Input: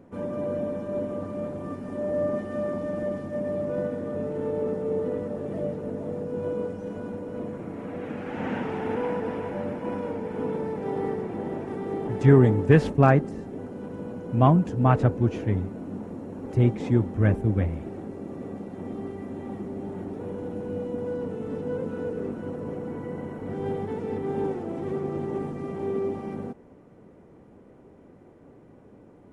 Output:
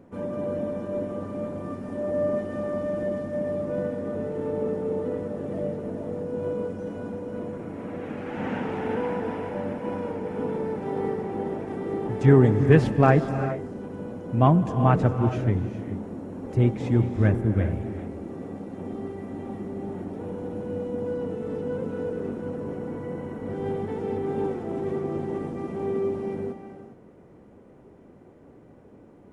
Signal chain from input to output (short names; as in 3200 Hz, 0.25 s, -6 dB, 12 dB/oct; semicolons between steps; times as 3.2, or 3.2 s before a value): non-linear reverb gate 0.44 s rising, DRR 8.5 dB